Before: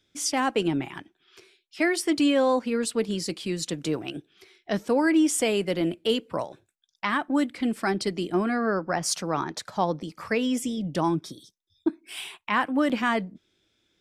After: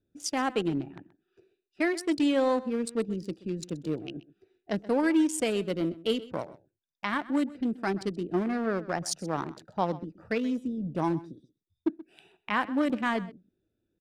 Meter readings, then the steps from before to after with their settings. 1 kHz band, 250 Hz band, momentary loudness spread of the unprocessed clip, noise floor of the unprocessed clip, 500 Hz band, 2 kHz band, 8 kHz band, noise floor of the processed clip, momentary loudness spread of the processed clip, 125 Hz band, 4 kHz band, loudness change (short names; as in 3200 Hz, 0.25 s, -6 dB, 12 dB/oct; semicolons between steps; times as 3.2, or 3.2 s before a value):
-4.5 dB, -3.0 dB, 11 LU, -73 dBFS, -3.5 dB, -5.0 dB, -7.5 dB, -83 dBFS, 11 LU, -2.5 dB, -7.0 dB, -4.0 dB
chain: Wiener smoothing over 41 samples; outdoor echo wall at 22 m, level -18 dB; gain -2.5 dB